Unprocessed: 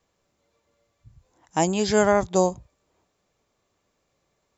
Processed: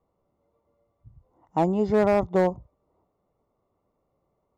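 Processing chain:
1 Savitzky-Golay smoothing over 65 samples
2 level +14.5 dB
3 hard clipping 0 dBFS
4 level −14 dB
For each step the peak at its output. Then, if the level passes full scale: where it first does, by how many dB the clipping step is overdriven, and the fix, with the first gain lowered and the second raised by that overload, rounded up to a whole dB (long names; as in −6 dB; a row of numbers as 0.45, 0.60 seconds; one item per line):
−9.5, +5.0, 0.0, −14.0 dBFS
step 2, 5.0 dB
step 2 +9.5 dB, step 4 −9 dB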